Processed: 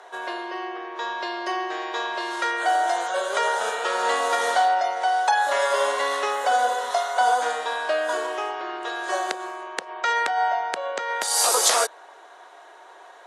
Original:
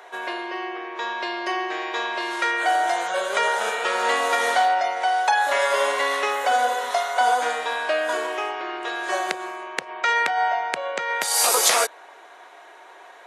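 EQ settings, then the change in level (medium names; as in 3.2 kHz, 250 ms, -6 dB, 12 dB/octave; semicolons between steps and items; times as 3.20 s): high-pass 290 Hz 12 dB/octave; low-pass 11 kHz 24 dB/octave; peaking EQ 2.3 kHz -7.5 dB 0.59 oct; 0.0 dB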